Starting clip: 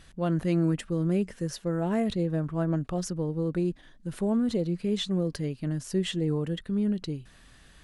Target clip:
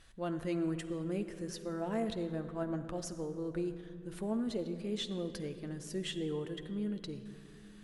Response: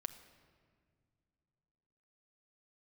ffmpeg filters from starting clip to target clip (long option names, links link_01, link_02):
-filter_complex "[0:a]equalizer=frequency=160:width=0.79:gain=-6[link_01];[1:a]atrim=start_sample=2205,asetrate=29106,aresample=44100[link_02];[link_01][link_02]afir=irnorm=-1:irlink=0,volume=-5.5dB"